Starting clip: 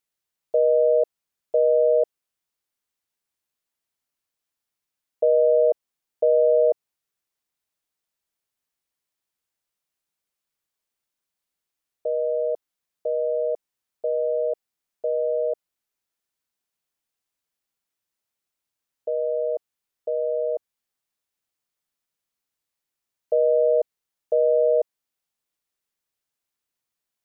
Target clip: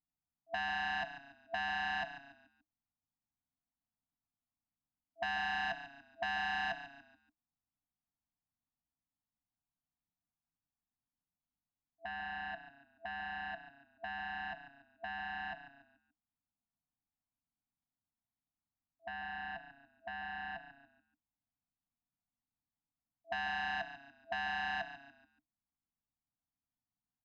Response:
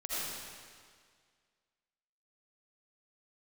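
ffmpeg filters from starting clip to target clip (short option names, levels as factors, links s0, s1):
-filter_complex "[0:a]adynamicsmooth=sensitivity=1:basefreq=610,asplit=5[s0][s1][s2][s3][s4];[s1]adelay=143,afreqshift=-30,volume=0.251[s5];[s2]adelay=286,afreqshift=-60,volume=0.0933[s6];[s3]adelay=429,afreqshift=-90,volume=0.0343[s7];[s4]adelay=572,afreqshift=-120,volume=0.0127[s8];[s0][s5][s6][s7][s8]amix=inputs=5:normalize=0,afftfilt=real='re*(1-between(b*sr/4096,310,660))':imag='im*(1-between(b*sr/4096,310,660))':win_size=4096:overlap=0.75,volume=1.33"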